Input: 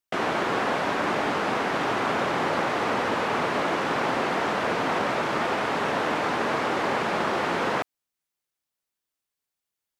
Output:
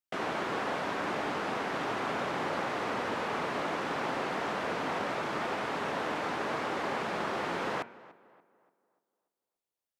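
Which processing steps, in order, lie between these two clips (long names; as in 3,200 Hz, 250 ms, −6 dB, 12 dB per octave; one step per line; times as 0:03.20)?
hum removal 117.9 Hz, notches 27
tape delay 291 ms, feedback 44%, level −18 dB, low-pass 2,100 Hz
level −7.5 dB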